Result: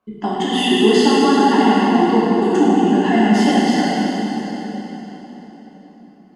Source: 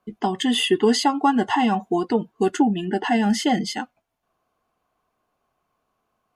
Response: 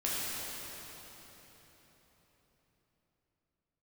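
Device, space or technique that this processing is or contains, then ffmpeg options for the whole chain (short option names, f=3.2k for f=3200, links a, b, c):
swimming-pool hall: -filter_complex "[1:a]atrim=start_sample=2205[a];[0:a][a]afir=irnorm=-1:irlink=0,highshelf=f=5.8k:g=-6.5,volume=-1dB"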